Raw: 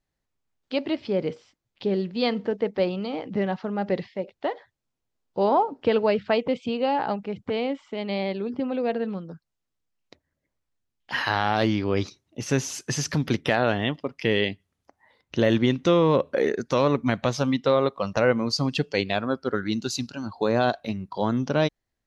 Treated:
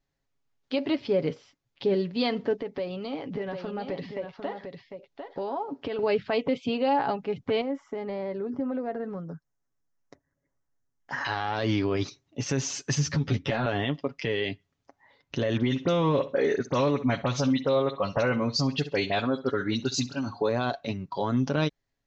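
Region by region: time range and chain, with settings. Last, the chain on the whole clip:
2.56–5.99 s: compression 5:1, threshold -30 dBFS + delay 750 ms -7 dB
7.61–11.25 s: high-order bell 3.3 kHz -14.5 dB 1.2 oct + compression 3:1, threshold -29 dBFS
12.95–13.66 s: peaking EQ 84 Hz +11 dB 2.3 oct + compression 2:1, threshold -21 dBFS + three-phase chorus
15.57–20.49 s: phase dispersion highs, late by 43 ms, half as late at 2.9 kHz + feedback delay 65 ms, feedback 25%, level -18.5 dB
whole clip: steep low-pass 7.2 kHz 48 dB/octave; comb 7.2 ms, depth 47%; peak limiter -16.5 dBFS

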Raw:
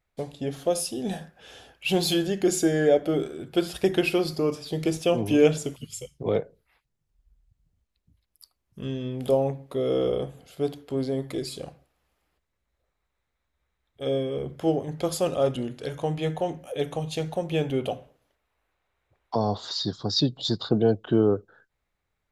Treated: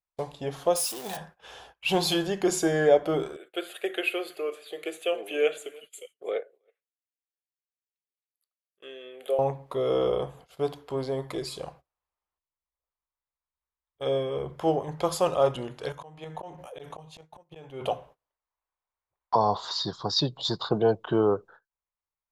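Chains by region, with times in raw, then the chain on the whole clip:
0.76–1.17 s: zero-crossing glitches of -26 dBFS + bass shelf 320 Hz -11.5 dB
3.36–9.39 s: high-pass 410 Hz 24 dB/octave + static phaser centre 2.3 kHz, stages 4 + delay 320 ms -24 dB
15.92–17.82 s: slow attack 645 ms + tremolo saw up 3.1 Hz, depth 65% + decay stretcher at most 20 dB/s
whole clip: fifteen-band graphic EQ 100 Hz -6 dB, 250 Hz -9 dB, 1 kHz +11 dB; gate -49 dBFS, range -21 dB; treble shelf 8.3 kHz -4 dB

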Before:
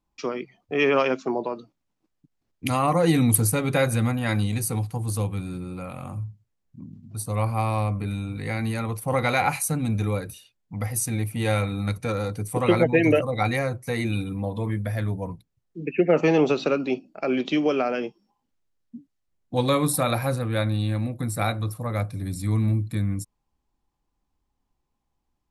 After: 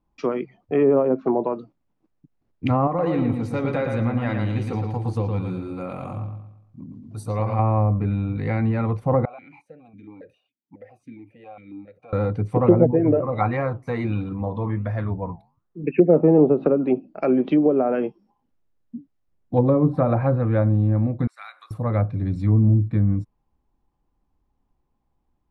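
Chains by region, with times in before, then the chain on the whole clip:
2.87–7.59 s: tone controls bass -6 dB, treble +5 dB + compression 4:1, threshold -25 dBFS + bucket-brigade echo 114 ms, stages 4096, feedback 39%, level -4.5 dB
9.25–12.13 s: compression, threshold -30 dBFS + stepped vowel filter 7.3 Hz
12.91–15.84 s: peaking EQ 1.1 kHz +9 dB 0.81 oct + flange 1.4 Hz, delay 4.1 ms, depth 9 ms, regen -85%
21.27–21.71 s: high-pass 1.2 kHz 24 dB/octave + compression 2:1, threshold -43 dBFS
whole clip: low-pass 1 kHz 6 dB/octave; low-pass that closes with the level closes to 630 Hz, closed at -19 dBFS; trim +6 dB

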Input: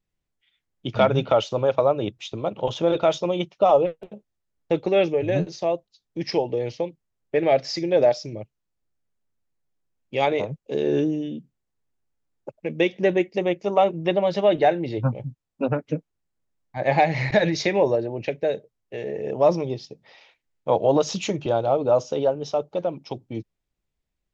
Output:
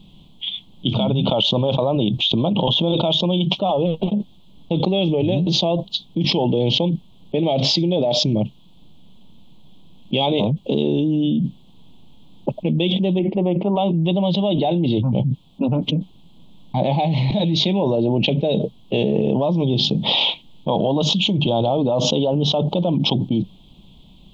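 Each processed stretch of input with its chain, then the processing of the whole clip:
13.19–13.76 s: low-pass 2 kHz 24 dB/octave + peaking EQ 61 Hz -12 dB 2.6 oct
whole clip: FFT filter 100 Hz 0 dB, 190 Hz +13 dB, 450 Hz -3 dB, 970 Hz +2 dB, 1.7 kHz -27 dB, 3.3 kHz +14 dB, 5.3 kHz -13 dB; level flattener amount 100%; trim -8.5 dB

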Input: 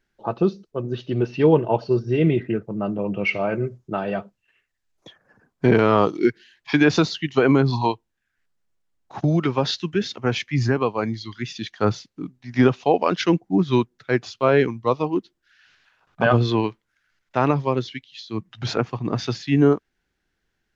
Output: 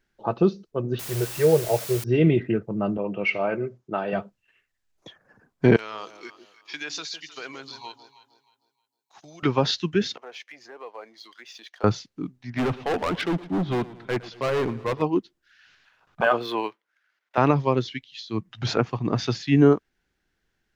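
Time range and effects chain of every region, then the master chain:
0.99–2.04 s: static phaser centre 980 Hz, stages 6 + word length cut 6-bit, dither triangular
2.97–4.13 s: high-pass 320 Hz 6 dB/octave + treble shelf 5.6 kHz -9.5 dB
5.76–9.43 s: differentiator + echo whose repeats swap between lows and highs 156 ms, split 800 Hz, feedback 53%, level -9 dB
10.17–11.84 s: waveshaping leveller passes 1 + compression 3:1, threshold -33 dBFS + ladder high-pass 410 Hz, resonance 30%
12.50–15.02 s: low-pass 3.1 kHz + hard clipper -21.5 dBFS + modulated delay 115 ms, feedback 55%, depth 79 cents, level -18 dB
16.21–17.38 s: median filter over 5 samples + high-pass 510 Hz + treble shelf 3.9 kHz -6 dB
whole clip: none

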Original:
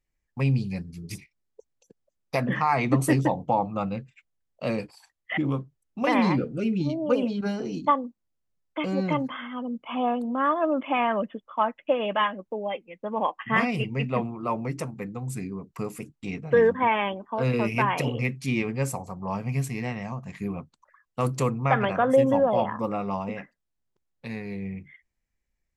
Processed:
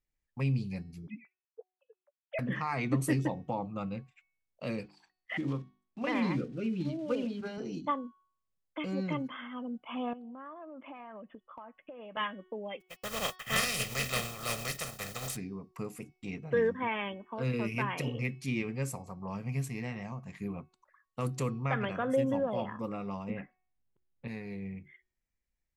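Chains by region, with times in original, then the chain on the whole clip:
1.07–2.39 s: formants replaced by sine waves + doubling 14 ms -13.5 dB
4.83–7.58 s: block-companded coder 5-bit + low-pass 4.2 kHz + hum notches 50/100/150/200/250/300 Hz
10.13–12.17 s: low-pass 2.3 kHz + compression 8:1, threshold -37 dBFS
12.80–15.35 s: spectral contrast reduction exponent 0.3 + gate -46 dBFS, range -33 dB + comb 1.6 ms, depth 68%
23.30–24.28 s: low-pass 3.2 kHz 24 dB/octave + bass shelf 330 Hz +8 dB
whole clip: de-hum 369.9 Hz, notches 16; dynamic bell 790 Hz, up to -7 dB, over -38 dBFS, Q 1.3; trim -6.5 dB

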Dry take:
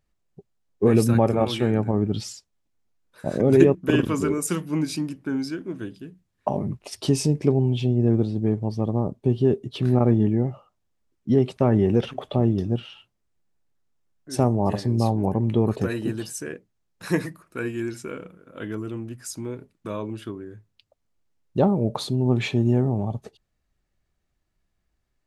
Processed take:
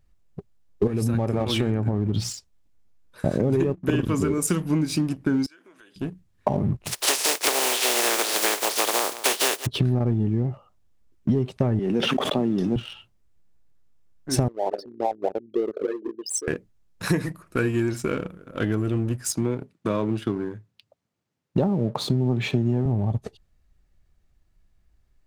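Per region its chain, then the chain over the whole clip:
0.87–2.30 s: hum notches 60/120/180 Hz + compression 3:1, threshold -24 dBFS
5.46–5.96 s: high-pass 960 Hz + compression 5:1, threshold -52 dBFS
6.85–9.65 s: spectral contrast reduction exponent 0.24 + high-pass 380 Hz 24 dB/octave + delay 176 ms -18 dB
11.79–12.76 s: high-pass 200 Hz 24 dB/octave + peaking EQ 530 Hz -4.5 dB 2.2 oct + decay stretcher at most 27 dB/s
14.48–16.48 s: resonances exaggerated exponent 3 + high-pass 470 Hz 24 dB/octave
19.32–22.86 s: high-pass 120 Hz 24 dB/octave + treble shelf 8.6 kHz -8.5 dB
whole clip: bass shelf 110 Hz +11.5 dB; waveshaping leveller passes 1; compression 10:1, threshold -24 dBFS; trim +5 dB

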